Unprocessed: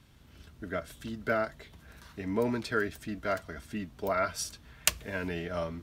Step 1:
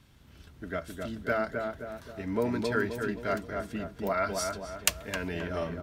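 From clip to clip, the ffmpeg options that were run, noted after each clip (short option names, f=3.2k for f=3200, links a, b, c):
-filter_complex "[0:a]asplit=2[a][b];[b]adelay=263,lowpass=f=1.3k:p=1,volume=-3dB,asplit=2[c][d];[d]adelay=263,lowpass=f=1.3k:p=1,volume=0.52,asplit=2[e][f];[f]adelay=263,lowpass=f=1.3k:p=1,volume=0.52,asplit=2[g][h];[h]adelay=263,lowpass=f=1.3k:p=1,volume=0.52,asplit=2[i][j];[j]adelay=263,lowpass=f=1.3k:p=1,volume=0.52,asplit=2[k][l];[l]adelay=263,lowpass=f=1.3k:p=1,volume=0.52,asplit=2[m][n];[n]adelay=263,lowpass=f=1.3k:p=1,volume=0.52[o];[a][c][e][g][i][k][m][o]amix=inputs=8:normalize=0"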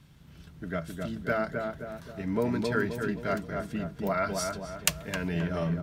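-af "equalizer=f=160:t=o:w=0.35:g=14"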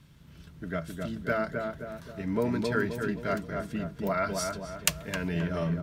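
-af "bandreject=f=770:w=12"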